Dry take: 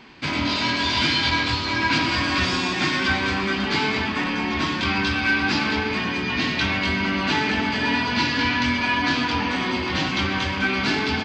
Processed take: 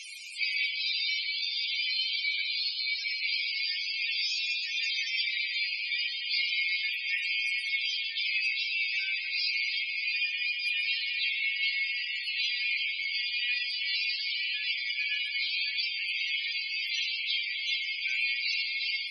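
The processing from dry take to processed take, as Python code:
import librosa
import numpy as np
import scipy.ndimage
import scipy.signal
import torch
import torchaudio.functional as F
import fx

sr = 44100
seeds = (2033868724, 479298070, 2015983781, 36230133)

p1 = fx.delta_mod(x, sr, bps=64000, step_db=-32.0)
p2 = scipy.signal.sosfilt(scipy.signal.ellip(4, 1.0, 50, 2200.0, 'highpass', fs=sr, output='sos'), p1)
p3 = fx.high_shelf(p2, sr, hz=6200.0, db=11.0)
p4 = fx.rider(p3, sr, range_db=10, speed_s=0.5)
p5 = fx.stretch_vocoder_free(p4, sr, factor=1.7)
p6 = fx.spec_topn(p5, sr, count=32)
y = p6 + fx.echo_single(p6, sr, ms=321, db=-23.0, dry=0)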